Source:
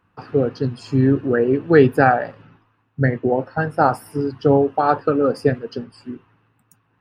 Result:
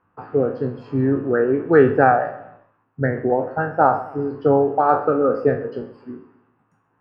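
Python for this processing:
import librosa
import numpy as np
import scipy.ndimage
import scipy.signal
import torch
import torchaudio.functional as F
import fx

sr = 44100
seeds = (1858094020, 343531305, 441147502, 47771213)

p1 = fx.spec_trails(x, sr, decay_s=0.39)
p2 = scipy.signal.sosfilt(scipy.signal.butter(2, 1300.0, 'lowpass', fs=sr, output='sos'), p1)
p3 = fx.low_shelf(p2, sr, hz=290.0, db=-9.5)
p4 = p3 + fx.echo_feedback(p3, sr, ms=131, feedback_pct=40, wet_db=-17.0, dry=0)
y = p4 * 10.0 ** (2.0 / 20.0)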